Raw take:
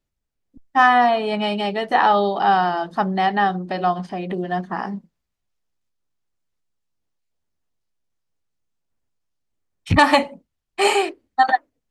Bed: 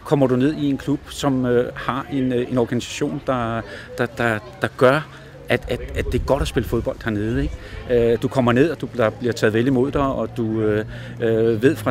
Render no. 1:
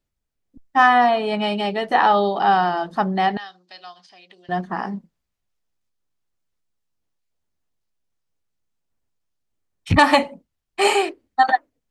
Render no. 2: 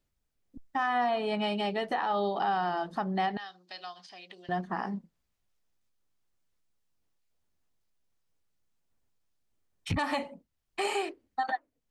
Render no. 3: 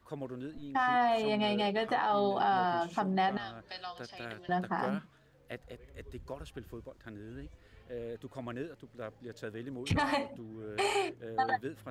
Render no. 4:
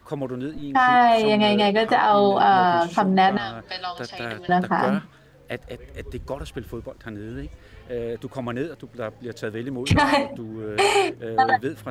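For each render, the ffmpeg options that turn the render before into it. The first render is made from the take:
ffmpeg -i in.wav -filter_complex "[0:a]asettb=1/sr,asplit=3[link_01][link_02][link_03];[link_01]atrim=end=3.374[link_04];[link_02]atrim=start=3.37:end=4.49,asetpts=PTS-STARTPTS,afade=type=in:duration=0.004:curve=qsin,afade=type=out:start_time=1.116:duration=0.004:curve=qsin,bandpass=frequency=4800:width_type=q:width=1.8[link_05];[link_03]atrim=start=4.486[link_06];[link_04][link_05]acrossfade=duration=0.004:curve1=hsin:curve2=qsin[link_07];[link_07][link_06]acrossfade=duration=0.004:curve1=qsin:curve2=hsin" out.wav
ffmpeg -i in.wav -af "acompressor=threshold=-42dB:ratio=1.5,alimiter=limit=-20dB:level=0:latency=1:release=133" out.wav
ffmpeg -i in.wav -i bed.wav -filter_complex "[1:a]volume=-24.5dB[link_01];[0:a][link_01]amix=inputs=2:normalize=0" out.wav
ffmpeg -i in.wav -af "volume=12dB" out.wav

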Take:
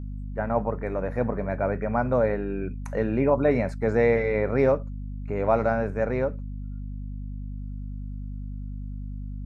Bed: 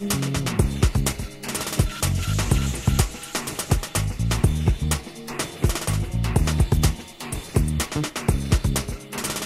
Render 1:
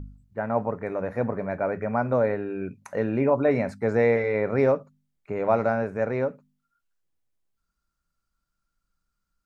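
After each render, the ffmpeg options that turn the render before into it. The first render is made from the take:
ffmpeg -i in.wav -af "bandreject=frequency=50:width_type=h:width=4,bandreject=frequency=100:width_type=h:width=4,bandreject=frequency=150:width_type=h:width=4,bandreject=frequency=200:width_type=h:width=4,bandreject=frequency=250:width_type=h:width=4" out.wav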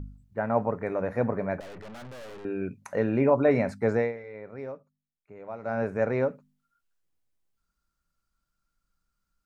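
ffmpeg -i in.wav -filter_complex "[0:a]asettb=1/sr,asplit=3[link_01][link_02][link_03];[link_01]atrim=end=1.604[link_04];[link_02]atrim=start=1.6:end=2.45,asetpts=PTS-STARTPTS,afade=type=in:duration=0.004:curve=qsin,afade=type=out:start_time=0.846:duration=0.004:curve=qsin,aeval=exprs='(tanh(126*val(0)+0.65)-tanh(0.65))/126':channel_layout=same[link_05];[link_03]atrim=start=2.446[link_06];[link_04][link_05]acrossfade=duration=0.004:curve1=hsin:curve2=qsin[link_07];[link_07][link_06]acrossfade=duration=0.004:curve1=qsin:curve2=hsin,asplit=3[link_08][link_09][link_10];[link_08]atrim=end=4.13,asetpts=PTS-STARTPTS,afade=type=out:start_time=3.9:duration=0.23:silence=0.141254[link_11];[link_09]atrim=start=4.13:end=5.62,asetpts=PTS-STARTPTS,volume=-17dB[link_12];[link_10]atrim=start=5.62,asetpts=PTS-STARTPTS,afade=type=in:duration=0.23:silence=0.141254[link_13];[link_11][link_12][link_13]concat=n=3:v=0:a=1" out.wav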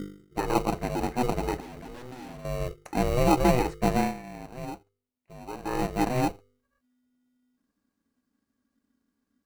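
ffmpeg -i in.wav -filter_complex "[0:a]aeval=exprs='val(0)*sin(2*PI*250*n/s)':channel_layout=same,asplit=2[link_01][link_02];[link_02]acrusher=samples=26:mix=1:aa=0.000001,volume=-3dB[link_03];[link_01][link_03]amix=inputs=2:normalize=0" out.wav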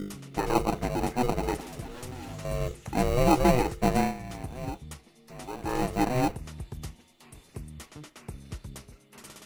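ffmpeg -i in.wav -i bed.wav -filter_complex "[1:a]volume=-20dB[link_01];[0:a][link_01]amix=inputs=2:normalize=0" out.wav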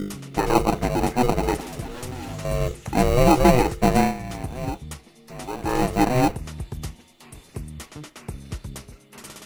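ffmpeg -i in.wav -af "volume=6.5dB,alimiter=limit=-3dB:level=0:latency=1" out.wav

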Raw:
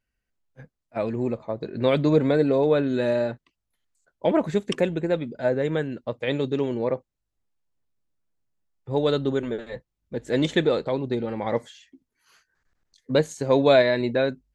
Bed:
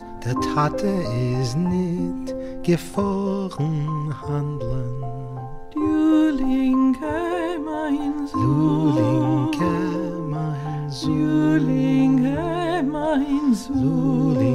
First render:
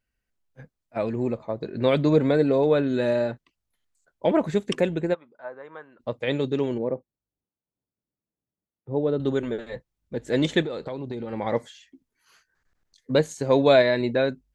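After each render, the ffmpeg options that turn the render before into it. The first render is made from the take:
ffmpeg -i in.wav -filter_complex "[0:a]asplit=3[link_01][link_02][link_03];[link_01]afade=type=out:start_time=5.13:duration=0.02[link_04];[link_02]bandpass=frequency=1100:width_type=q:width=4,afade=type=in:start_time=5.13:duration=0.02,afade=type=out:start_time=5.99:duration=0.02[link_05];[link_03]afade=type=in:start_time=5.99:duration=0.02[link_06];[link_04][link_05][link_06]amix=inputs=3:normalize=0,asettb=1/sr,asplit=3[link_07][link_08][link_09];[link_07]atrim=end=6.784[link_10];[link_08]atrim=start=6.78:end=9.2,asetpts=PTS-STARTPTS,afade=type=in:duration=0.004:curve=qsin,afade=type=out:start_time=2.416:duration=0.004:curve=qsin,bandpass=frequency=260:width_type=q:width=0.6[link_11];[link_09]atrim=start=9.196[link_12];[link_10][link_11]acrossfade=duration=0.004:curve1=hsin:curve2=qsin[link_13];[link_13][link_12]acrossfade=duration=0.004:curve1=qsin:curve2=hsin,asettb=1/sr,asplit=3[link_14][link_15][link_16];[link_14]atrim=end=10.624[link_17];[link_15]atrim=start=10.62:end=11.33,asetpts=PTS-STARTPTS,afade=type=in:duration=0.004:curve=qsin,afade=type=out:start_time=0.706:duration=0.004:curve=qsin,acompressor=threshold=-28dB:ratio=6:attack=3.2:release=140:knee=1:detection=peak[link_18];[link_16]atrim=start=11.326[link_19];[link_17][link_18]acrossfade=duration=0.004:curve1=hsin:curve2=qsin[link_20];[link_20][link_19]acrossfade=duration=0.004:curve1=qsin:curve2=hsin" out.wav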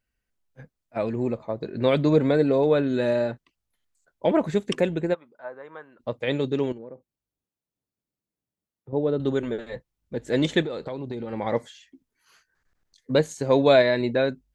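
ffmpeg -i in.wav -filter_complex "[0:a]asettb=1/sr,asplit=3[link_01][link_02][link_03];[link_01]atrim=end=6.724[link_04];[link_02]atrim=start=6.72:end=8.93,asetpts=PTS-STARTPTS,afade=type=in:duration=0.004:curve=qsin,afade=type=out:start_time=2.206:duration=0.004:curve=qsin,acompressor=threshold=-39dB:ratio=4:attack=3.2:release=140:knee=1:detection=peak[link_05];[link_03]atrim=start=8.926[link_06];[link_04][link_05]acrossfade=duration=0.004:curve1=hsin:curve2=qsin[link_07];[link_07][link_06]acrossfade=duration=0.004:curve1=qsin:curve2=hsin" out.wav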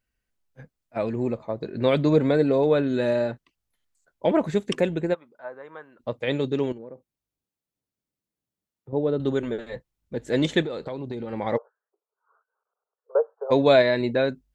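ffmpeg -i in.wav -filter_complex "[0:a]asplit=3[link_01][link_02][link_03];[link_01]afade=type=out:start_time=11.56:duration=0.02[link_04];[link_02]asuperpass=centerf=760:order=20:qfactor=0.75,afade=type=in:start_time=11.56:duration=0.02,afade=type=out:start_time=13.5:duration=0.02[link_05];[link_03]afade=type=in:start_time=13.5:duration=0.02[link_06];[link_04][link_05][link_06]amix=inputs=3:normalize=0" out.wav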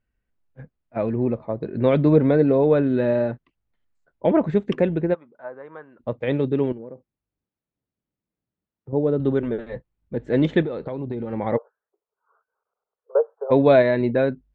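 ffmpeg -i in.wav -af "lowpass=2400,lowshelf=frequency=450:gain=5.5" out.wav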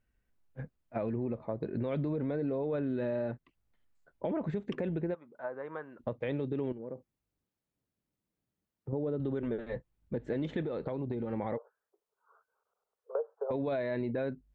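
ffmpeg -i in.wav -af "alimiter=limit=-15.5dB:level=0:latency=1:release=44,acompressor=threshold=-35dB:ratio=2.5" out.wav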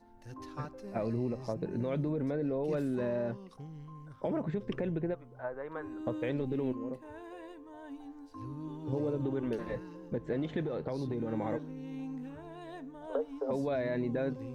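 ffmpeg -i in.wav -i bed.wav -filter_complex "[1:a]volume=-23.5dB[link_01];[0:a][link_01]amix=inputs=2:normalize=0" out.wav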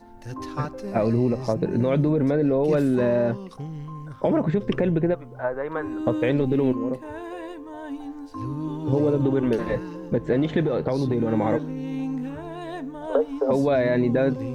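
ffmpeg -i in.wav -af "volume=12dB" out.wav

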